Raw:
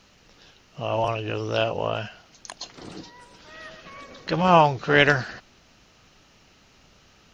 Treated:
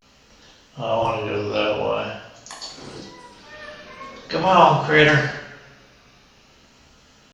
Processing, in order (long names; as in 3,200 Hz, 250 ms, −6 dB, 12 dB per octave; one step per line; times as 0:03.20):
coupled-rooms reverb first 0.64 s, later 1.7 s, from −18 dB, DRR −4 dB
pitch vibrato 0.46 Hz 94 cents
level −2 dB